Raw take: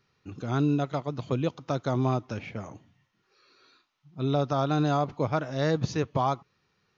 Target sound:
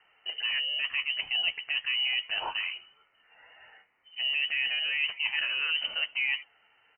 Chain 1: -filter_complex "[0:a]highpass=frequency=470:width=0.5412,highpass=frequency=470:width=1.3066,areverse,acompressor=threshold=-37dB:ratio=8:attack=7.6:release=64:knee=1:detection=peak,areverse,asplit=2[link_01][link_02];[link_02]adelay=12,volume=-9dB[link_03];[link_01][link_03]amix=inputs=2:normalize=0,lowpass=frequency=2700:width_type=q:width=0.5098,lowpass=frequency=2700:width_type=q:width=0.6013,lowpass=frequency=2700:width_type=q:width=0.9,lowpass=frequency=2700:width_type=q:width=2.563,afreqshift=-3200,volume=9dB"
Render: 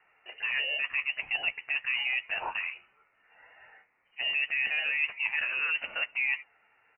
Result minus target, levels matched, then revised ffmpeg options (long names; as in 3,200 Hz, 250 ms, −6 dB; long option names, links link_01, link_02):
500 Hz band +4.5 dB
-filter_complex "[0:a]highpass=frequency=210:width=0.5412,highpass=frequency=210:width=1.3066,areverse,acompressor=threshold=-37dB:ratio=8:attack=7.6:release=64:knee=1:detection=peak,areverse,asplit=2[link_01][link_02];[link_02]adelay=12,volume=-9dB[link_03];[link_01][link_03]amix=inputs=2:normalize=0,lowpass=frequency=2700:width_type=q:width=0.5098,lowpass=frequency=2700:width_type=q:width=0.6013,lowpass=frequency=2700:width_type=q:width=0.9,lowpass=frequency=2700:width_type=q:width=2.563,afreqshift=-3200,volume=9dB"